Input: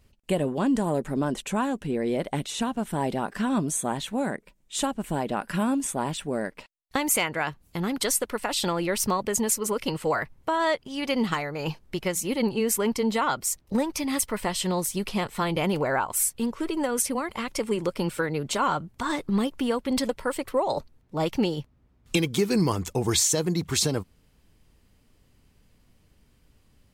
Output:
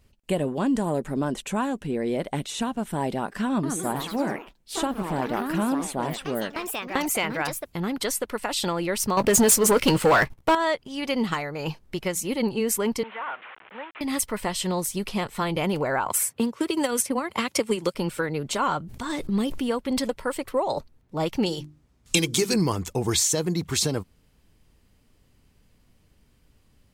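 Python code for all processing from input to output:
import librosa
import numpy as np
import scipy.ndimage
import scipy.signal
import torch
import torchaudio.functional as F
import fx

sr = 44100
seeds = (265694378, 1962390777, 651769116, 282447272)

y = fx.chain(x, sr, fx.peak_eq(hz=8400.0, db=-4.5, octaves=1.5),
    fx.echo_pitch(ms=162, semitones=3, count=3, db_per_echo=-6.0), at=(3.47, 8.28))
y = fx.chain(y, sr, fx.leveller(passes=3),
    fx.doubler(ms=16.0, db=-14.0), at=(9.17, 10.55))
y = fx.chain(y, sr, fx.delta_mod(bps=16000, step_db=-31.0),
    fx.highpass(hz=1200.0, slope=12),
    fx.tilt_eq(slope=-2.5), at=(13.03, 14.01))
y = fx.chain(y, sr, fx.highpass(hz=85.0, slope=24),
    fx.transient(attack_db=5, sustain_db=-6),
    fx.band_squash(depth_pct=70), at=(16.06, 17.95))
y = fx.chain(y, sr, fx.peak_eq(hz=1100.0, db=-5.5, octaves=1.8),
    fx.sustainer(db_per_s=42.0), at=(18.81, 19.69))
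y = fx.chain(y, sr, fx.peak_eq(hz=7300.0, db=11.0, octaves=2.0),
    fx.hum_notches(base_hz=50, count=7), at=(21.46, 22.54))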